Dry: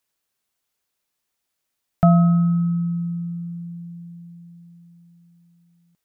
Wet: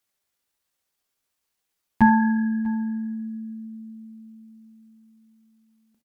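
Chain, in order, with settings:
pitch shifter +4.5 semitones
on a send: single-tap delay 645 ms −21.5 dB
on the sum: reverb whose tail is shaped and stops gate 100 ms flat, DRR 7 dB

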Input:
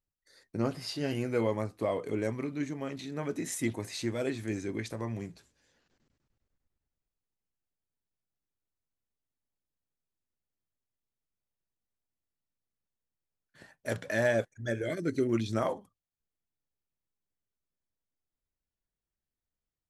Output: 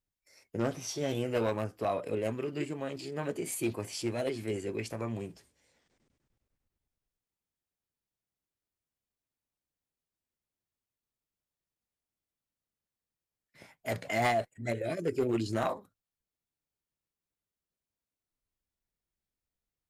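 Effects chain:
asymmetric clip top −22.5 dBFS
formants moved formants +3 semitones

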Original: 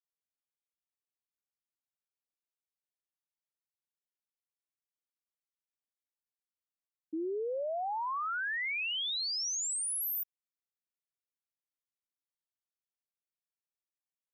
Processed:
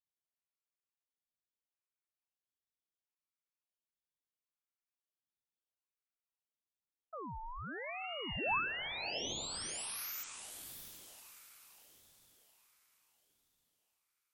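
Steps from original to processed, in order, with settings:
parametric band 1,800 Hz +12.5 dB 0.41 octaves
feedback delay with all-pass diffusion 661 ms, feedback 43%, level −7 dB
ring modulator whose carrier an LFO sweeps 1,100 Hz, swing 60%, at 0.74 Hz
level −6.5 dB

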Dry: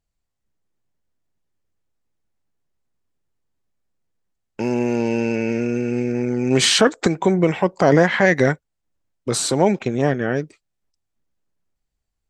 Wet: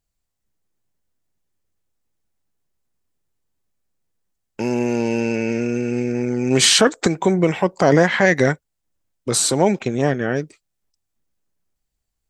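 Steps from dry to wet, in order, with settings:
high-shelf EQ 5,800 Hz +7.5 dB

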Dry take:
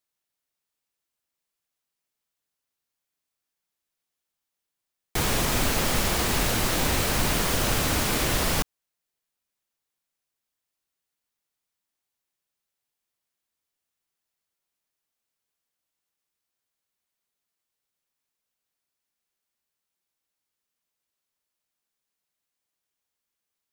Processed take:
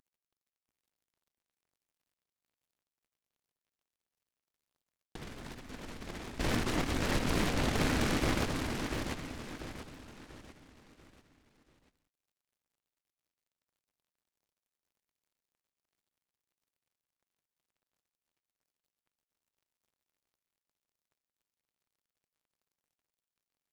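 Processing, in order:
variable-slope delta modulation 16 kbit/s
0:06.38–0:08.46: downward expander −19 dBFS
parametric band 270 Hz +6 dB 0.72 octaves
compressor whose output falls as the input rises −34 dBFS, ratio −0.5
surface crackle 77 per second −67 dBFS
repeating echo 690 ms, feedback 40%, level −5 dB
short delay modulated by noise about 1,300 Hz, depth 0.21 ms

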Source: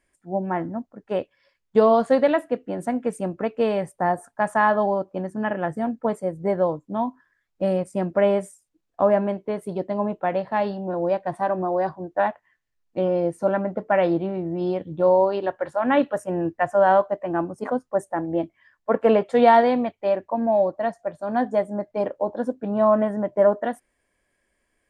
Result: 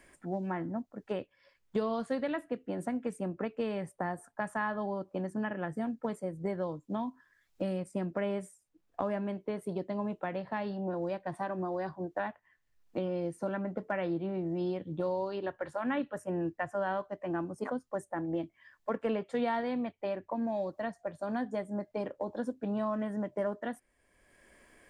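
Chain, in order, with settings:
dynamic equaliser 680 Hz, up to −8 dB, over −31 dBFS, Q 1
multiband upward and downward compressor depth 70%
level −8 dB

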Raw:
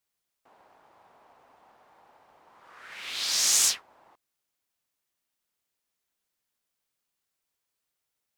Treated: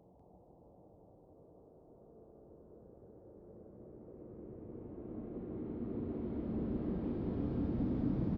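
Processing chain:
low-pass that shuts in the quiet parts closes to 320 Hz, open at −26 dBFS
leveller curve on the samples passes 2
low-pass filter sweep 11,000 Hz → 210 Hz, 0:00.41–0:03.57
frequency shifter −46 Hz
high-pass filter 56 Hz
spectral tilt −4 dB per octave
extreme stretch with random phases 11×, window 0.50 s, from 0:02.54
on a send: loudspeakers that aren't time-aligned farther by 11 metres −12 dB, 67 metres −3 dB

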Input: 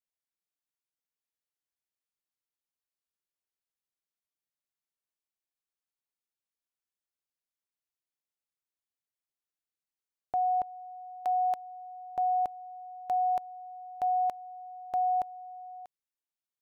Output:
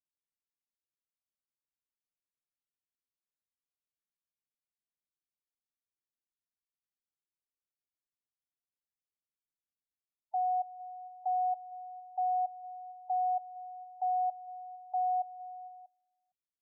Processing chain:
slap from a distant wall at 79 metres, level −21 dB
low-pass that shuts in the quiet parts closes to 300 Hz, open at −26.5 dBFS
gate on every frequency bin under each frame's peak −15 dB strong
level −3 dB

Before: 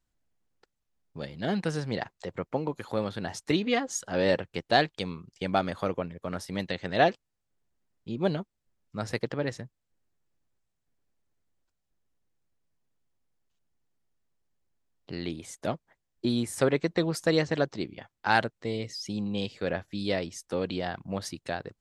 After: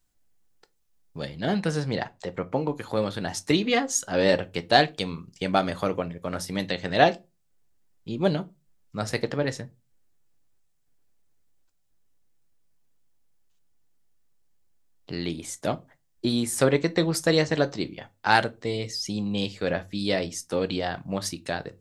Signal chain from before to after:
high-shelf EQ 5,100 Hz +9.5 dB, from 0:01.29 +2 dB, from 0:02.96 +7 dB
convolution reverb RT60 0.25 s, pre-delay 7 ms, DRR 11.5 dB
level +3 dB

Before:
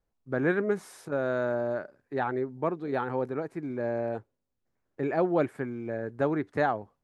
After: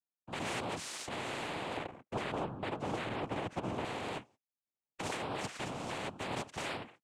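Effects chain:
high-pass filter 180 Hz 6 dB per octave
brickwall limiter −25.5 dBFS, peak gain reduction 12 dB
dynamic equaliser 750 Hz, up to −4 dB, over −47 dBFS, Q 0.88
noise gate −59 dBFS, range −34 dB
cochlear-implant simulation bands 4
0:01.77–0:03.85: tilt shelving filter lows +8.5 dB, about 1,300 Hz
every bin compressed towards the loudest bin 2 to 1
level −7 dB

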